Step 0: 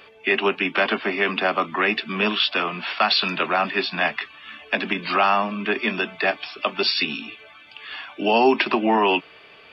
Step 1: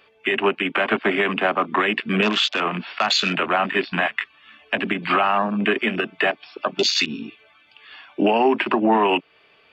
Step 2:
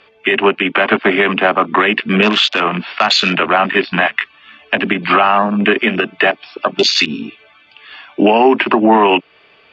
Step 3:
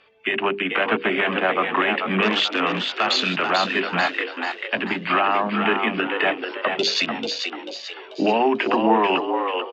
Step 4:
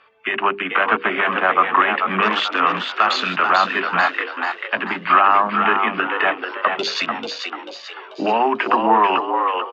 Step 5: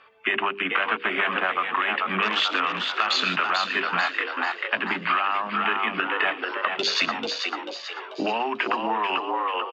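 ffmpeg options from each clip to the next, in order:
-af "afwtdn=0.0501,alimiter=limit=0.133:level=0:latency=1:release=250,volume=2.66"
-af "lowpass=6100,volume=2.37"
-filter_complex "[0:a]bandreject=f=50:t=h:w=6,bandreject=f=100:t=h:w=6,bandreject=f=150:t=h:w=6,bandreject=f=200:t=h:w=6,bandreject=f=250:t=h:w=6,bandreject=f=300:t=h:w=6,bandreject=f=350:t=h:w=6,bandreject=f=400:t=h:w=6,asplit=2[s0][s1];[s1]asplit=5[s2][s3][s4][s5][s6];[s2]adelay=440,afreqshift=80,volume=0.531[s7];[s3]adelay=880,afreqshift=160,volume=0.229[s8];[s4]adelay=1320,afreqshift=240,volume=0.0977[s9];[s5]adelay=1760,afreqshift=320,volume=0.0422[s10];[s6]adelay=2200,afreqshift=400,volume=0.0182[s11];[s7][s8][s9][s10][s11]amix=inputs=5:normalize=0[s12];[s0][s12]amix=inputs=2:normalize=0,volume=0.376"
-af "equalizer=f=1200:w=1.1:g=12.5,volume=0.668"
-filter_complex "[0:a]acrossover=split=2300[s0][s1];[s0]acompressor=threshold=0.0631:ratio=6[s2];[s1]aecho=1:1:114:0.178[s3];[s2][s3]amix=inputs=2:normalize=0"

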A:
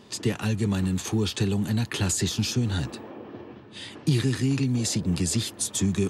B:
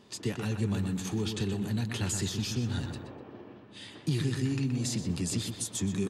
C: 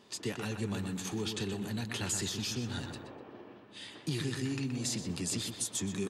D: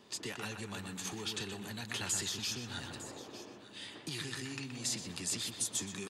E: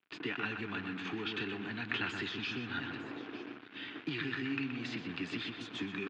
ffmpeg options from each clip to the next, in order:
-filter_complex "[0:a]asplit=2[s0][s1];[s1]adelay=124,lowpass=f=3000:p=1,volume=0.501,asplit=2[s2][s3];[s3]adelay=124,lowpass=f=3000:p=1,volume=0.45,asplit=2[s4][s5];[s5]adelay=124,lowpass=f=3000:p=1,volume=0.45,asplit=2[s6][s7];[s7]adelay=124,lowpass=f=3000:p=1,volume=0.45,asplit=2[s8][s9];[s9]adelay=124,lowpass=f=3000:p=1,volume=0.45[s10];[s0][s2][s4][s6][s8][s10]amix=inputs=6:normalize=0,volume=0.447"
-af "lowshelf=f=220:g=-9.5"
-filter_complex "[0:a]acrossover=split=670|1100[s0][s1][s2];[s0]acompressor=threshold=0.00631:ratio=4[s3];[s2]aecho=1:1:904:0.178[s4];[s3][s1][s4]amix=inputs=3:normalize=0"
-af "acrusher=bits=7:mix=0:aa=0.5,highpass=130,equalizer=f=190:t=q:w=4:g=-3,equalizer=f=290:t=q:w=4:g=8,equalizer=f=560:t=q:w=4:g=-9,equalizer=f=880:t=q:w=4:g=-4,equalizer=f=1500:t=q:w=4:g=6,equalizer=f=2500:t=q:w=4:g=4,lowpass=f=3100:w=0.5412,lowpass=f=3100:w=1.3066,volume=1.5"

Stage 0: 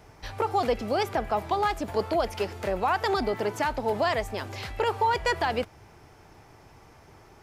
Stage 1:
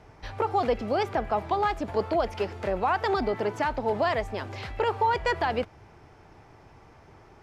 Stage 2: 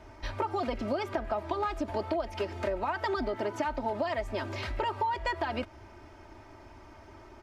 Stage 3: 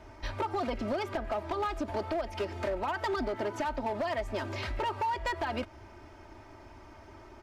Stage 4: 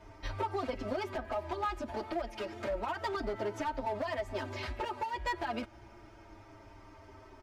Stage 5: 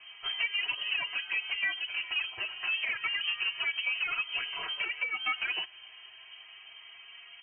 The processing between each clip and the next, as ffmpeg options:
-af "aemphasis=mode=reproduction:type=50fm"
-af "aecho=1:1:3.2:0.77,acompressor=threshold=0.0398:ratio=6"
-af "asoftclip=type=hard:threshold=0.0473"
-filter_complex "[0:a]asplit=2[s0][s1];[s1]adelay=7.1,afreqshift=-0.3[s2];[s0][s2]amix=inputs=2:normalize=1"
-af "lowpass=f=2700:t=q:w=0.5098,lowpass=f=2700:t=q:w=0.6013,lowpass=f=2700:t=q:w=0.9,lowpass=f=2700:t=q:w=2.563,afreqshift=-3200,volume=1.41"

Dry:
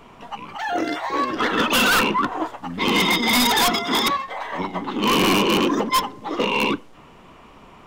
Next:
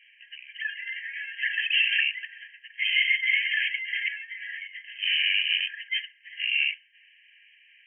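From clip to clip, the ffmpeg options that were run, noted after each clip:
-af "afftfilt=real='re*between(b*sr/4096,1600,3200)':imag='im*between(b*sr/4096,1600,3200)':win_size=4096:overlap=0.75"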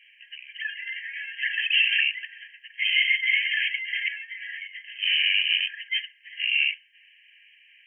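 -af "equalizer=f=1600:w=1.5:g=-3.5,volume=1.41"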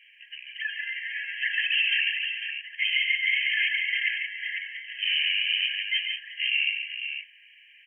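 -filter_complex "[0:a]alimiter=limit=0.158:level=0:latency=1:release=211,asplit=2[s0][s1];[s1]aecho=0:1:142|181|500:0.447|0.251|0.422[s2];[s0][s2]amix=inputs=2:normalize=0"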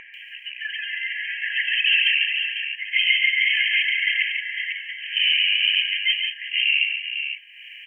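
-filter_complex "[0:a]acrossover=split=1700[s0][s1];[s1]adelay=140[s2];[s0][s2]amix=inputs=2:normalize=0,acompressor=mode=upward:threshold=0.0126:ratio=2.5,volume=2.24"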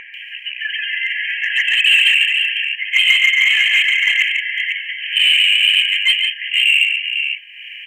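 -filter_complex "[0:a]equalizer=f=2800:w=0.52:g=5.5,asplit=2[s0][s1];[s1]asoftclip=type=hard:threshold=0.188,volume=0.501[s2];[s0][s2]amix=inputs=2:normalize=0,volume=0.891"

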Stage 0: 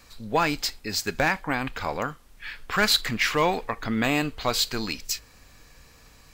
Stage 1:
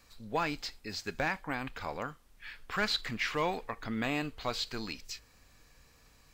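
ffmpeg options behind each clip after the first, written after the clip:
-filter_complex "[0:a]acrossover=split=5700[s0][s1];[s1]acompressor=threshold=0.00562:ratio=4:attack=1:release=60[s2];[s0][s2]amix=inputs=2:normalize=0,volume=0.355"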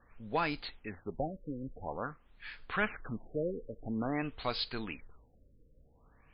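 -af "afftfilt=real='re*lt(b*sr/1024,550*pow(5200/550,0.5+0.5*sin(2*PI*0.49*pts/sr)))':imag='im*lt(b*sr/1024,550*pow(5200/550,0.5+0.5*sin(2*PI*0.49*pts/sr)))':win_size=1024:overlap=0.75"

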